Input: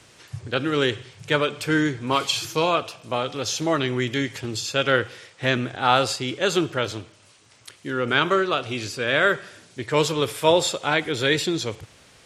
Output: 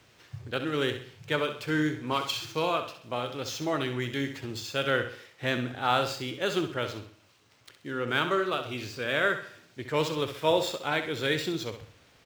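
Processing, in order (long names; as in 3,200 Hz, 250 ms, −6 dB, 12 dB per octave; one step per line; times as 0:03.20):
running median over 5 samples
repeating echo 65 ms, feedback 37%, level −9.5 dB
level −7 dB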